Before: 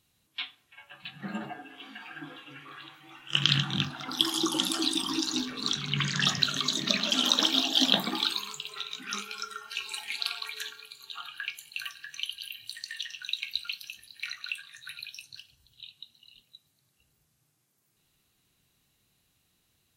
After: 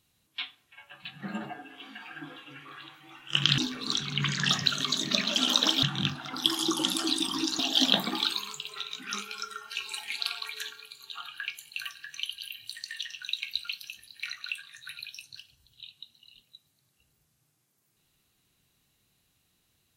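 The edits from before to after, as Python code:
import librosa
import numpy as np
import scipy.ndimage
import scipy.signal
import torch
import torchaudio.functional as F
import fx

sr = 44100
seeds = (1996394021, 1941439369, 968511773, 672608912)

y = fx.edit(x, sr, fx.move(start_s=3.58, length_s=1.76, to_s=7.59), tone=tone)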